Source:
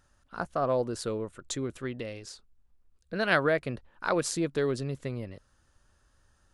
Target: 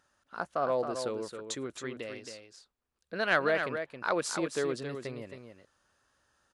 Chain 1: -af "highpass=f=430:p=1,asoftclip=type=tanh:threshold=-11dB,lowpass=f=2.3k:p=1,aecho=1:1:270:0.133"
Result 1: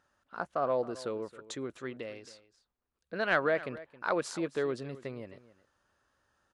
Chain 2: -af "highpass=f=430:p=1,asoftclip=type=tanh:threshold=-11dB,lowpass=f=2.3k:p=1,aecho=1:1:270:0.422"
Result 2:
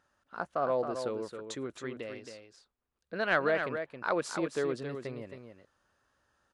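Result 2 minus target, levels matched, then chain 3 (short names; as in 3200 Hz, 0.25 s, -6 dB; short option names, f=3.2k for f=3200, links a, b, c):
8000 Hz band -6.0 dB
-af "highpass=f=430:p=1,asoftclip=type=tanh:threshold=-11dB,lowpass=f=6.4k:p=1,aecho=1:1:270:0.422"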